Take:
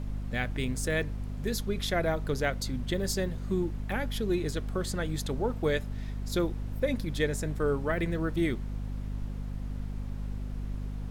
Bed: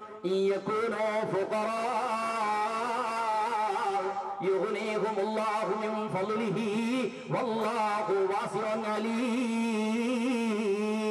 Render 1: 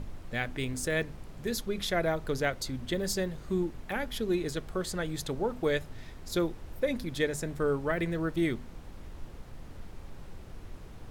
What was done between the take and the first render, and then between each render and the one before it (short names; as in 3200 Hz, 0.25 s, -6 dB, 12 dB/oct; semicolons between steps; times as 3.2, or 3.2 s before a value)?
notches 50/100/150/200/250 Hz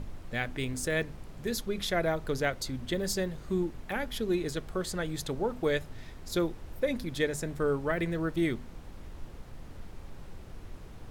nothing audible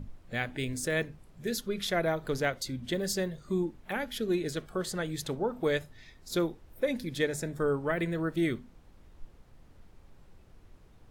noise print and reduce 11 dB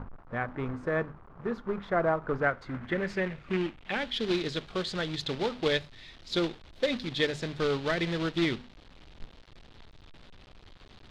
companded quantiser 4-bit; low-pass sweep 1200 Hz -> 3800 Hz, 2.25–4.22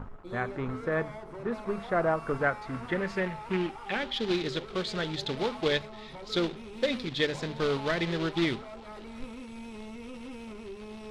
add bed -14 dB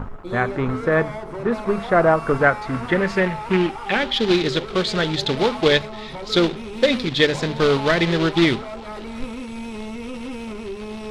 gain +11 dB